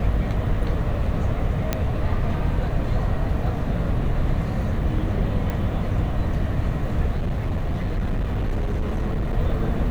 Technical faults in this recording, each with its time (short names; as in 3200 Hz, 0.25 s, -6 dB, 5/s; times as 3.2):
1.73 pop -7 dBFS
5.5 pop -15 dBFS
7.16–9.38 clipped -20 dBFS